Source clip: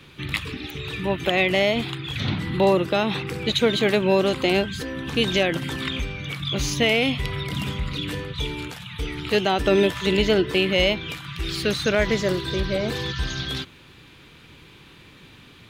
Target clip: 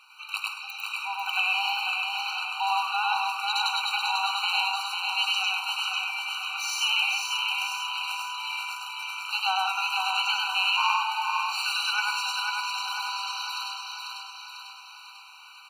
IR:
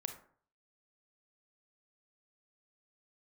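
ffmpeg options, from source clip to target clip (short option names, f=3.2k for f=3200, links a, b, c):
-filter_complex "[0:a]aecho=1:1:495|990|1485|1980|2475|2970|3465:0.631|0.341|0.184|0.0994|0.0537|0.029|0.0156,asplit=3[a][b][c];[a]afade=t=out:st=10.76:d=0.02[d];[b]aeval=exprs='val(0)*sin(2*PI*510*n/s)':c=same,afade=t=in:st=10.76:d=0.02,afade=t=out:st=11.46:d=0.02[e];[c]afade=t=in:st=11.46:d=0.02[f];[d][e][f]amix=inputs=3:normalize=0,asplit=2[g][h];[1:a]atrim=start_sample=2205,adelay=100[i];[h][i]afir=irnorm=-1:irlink=0,volume=2dB[j];[g][j]amix=inputs=2:normalize=0,afftfilt=real='re*eq(mod(floor(b*sr/1024/770),2),1)':imag='im*eq(mod(floor(b*sr/1024/770),2),1)':win_size=1024:overlap=0.75,volume=-1.5dB"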